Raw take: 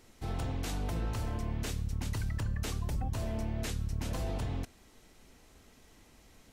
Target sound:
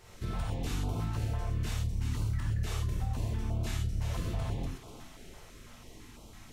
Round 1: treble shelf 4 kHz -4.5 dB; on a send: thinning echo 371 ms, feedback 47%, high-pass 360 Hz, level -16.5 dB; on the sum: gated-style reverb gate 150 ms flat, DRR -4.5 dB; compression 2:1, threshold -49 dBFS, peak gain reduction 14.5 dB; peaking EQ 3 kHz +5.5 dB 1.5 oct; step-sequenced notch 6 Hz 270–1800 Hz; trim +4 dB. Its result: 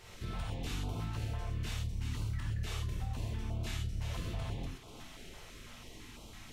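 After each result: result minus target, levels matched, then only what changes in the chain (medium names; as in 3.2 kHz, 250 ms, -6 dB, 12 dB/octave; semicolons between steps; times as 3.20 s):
compression: peak gain reduction +5 dB; 4 kHz band +4.5 dB
change: compression 2:1, threshold -39.5 dBFS, peak gain reduction 9.5 dB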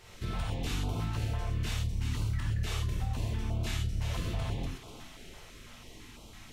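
4 kHz band +4.5 dB
remove: peaking EQ 3 kHz +5.5 dB 1.5 oct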